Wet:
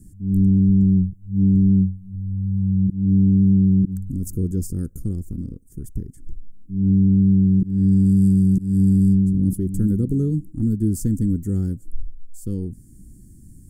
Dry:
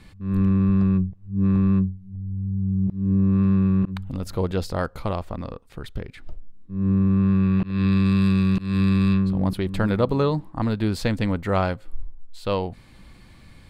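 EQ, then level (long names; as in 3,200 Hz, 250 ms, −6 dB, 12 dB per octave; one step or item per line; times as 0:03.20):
inverse Chebyshev band-stop filter 590–4,200 Hz, stop band 40 dB
parametric band 1,700 Hz +10 dB 2 octaves
high-shelf EQ 4,100 Hz +7 dB
+3.5 dB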